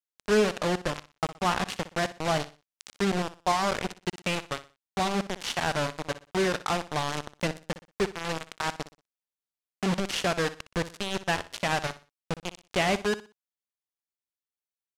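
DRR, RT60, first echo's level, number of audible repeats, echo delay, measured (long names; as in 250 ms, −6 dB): no reverb audible, no reverb audible, −15.0 dB, 2, 61 ms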